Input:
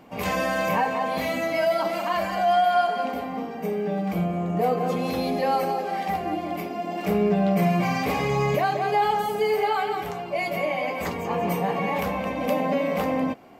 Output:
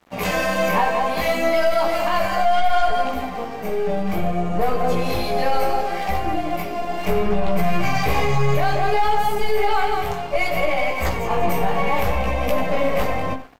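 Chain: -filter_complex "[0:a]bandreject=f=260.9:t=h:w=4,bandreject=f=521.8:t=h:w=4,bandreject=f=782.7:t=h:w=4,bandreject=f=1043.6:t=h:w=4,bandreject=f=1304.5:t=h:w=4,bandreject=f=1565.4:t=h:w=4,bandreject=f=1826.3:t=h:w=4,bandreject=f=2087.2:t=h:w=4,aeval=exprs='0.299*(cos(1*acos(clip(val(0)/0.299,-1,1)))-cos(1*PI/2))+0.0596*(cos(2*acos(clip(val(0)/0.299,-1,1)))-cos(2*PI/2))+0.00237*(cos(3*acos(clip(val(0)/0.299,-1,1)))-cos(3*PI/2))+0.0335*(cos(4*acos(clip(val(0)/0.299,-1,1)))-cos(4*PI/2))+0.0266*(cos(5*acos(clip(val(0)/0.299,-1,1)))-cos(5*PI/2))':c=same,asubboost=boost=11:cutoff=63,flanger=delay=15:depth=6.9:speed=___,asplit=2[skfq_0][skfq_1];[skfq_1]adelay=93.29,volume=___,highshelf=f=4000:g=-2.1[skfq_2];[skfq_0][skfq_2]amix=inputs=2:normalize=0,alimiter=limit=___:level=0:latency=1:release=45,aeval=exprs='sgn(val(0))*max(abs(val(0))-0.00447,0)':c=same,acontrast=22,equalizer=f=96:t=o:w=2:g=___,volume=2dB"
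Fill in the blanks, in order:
0.64, -14dB, -15dB, -2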